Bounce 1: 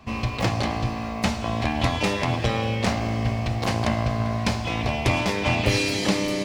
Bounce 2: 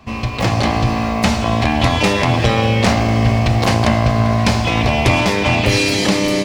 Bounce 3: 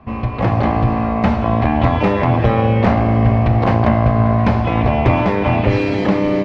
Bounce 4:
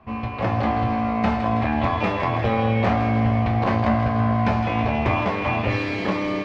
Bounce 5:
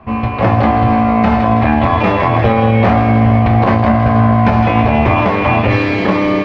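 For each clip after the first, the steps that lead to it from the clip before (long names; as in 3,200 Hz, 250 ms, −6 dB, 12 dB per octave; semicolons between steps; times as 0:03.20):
automatic gain control; in parallel at +3 dB: brickwall limiter −11.5 dBFS, peak gain reduction 10 dB; on the sum: level −3.5 dB
low-pass filter 1,500 Hz 12 dB per octave; level +1 dB
low-shelf EQ 460 Hz −6.5 dB; resonators tuned to a chord D2 major, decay 0.23 s; delay with a high-pass on its return 162 ms, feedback 65%, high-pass 1,700 Hz, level −8 dB; level +6.5 dB
high-shelf EQ 4,600 Hz −10.5 dB; floating-point word with a short mantissa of 8 bits; boost into a limiter +12.5 dB; level −1 dB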